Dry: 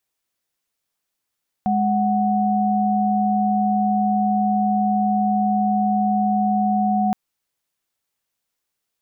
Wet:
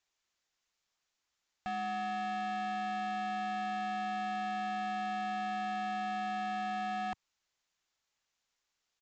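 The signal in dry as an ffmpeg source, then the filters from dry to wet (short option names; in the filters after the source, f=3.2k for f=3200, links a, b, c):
-f lavfi -i "aevalsrc='0.112*(sin(2*PI*207.65*t)+sin(2*PI*739.99*t))':d=5.47:s=44100"
-af "equalizer=f=125:t=o:w=1:g=-6,equalizer=f=250:t=o:w=1:g=-5,equalizer=f=500:t=o:w=1:g=-4,alimiter=limit=-22dB:level=0:latency=1:release=20,aresample=16000,asoftclip=type=hard:threshold=-35dB,aresample=44100"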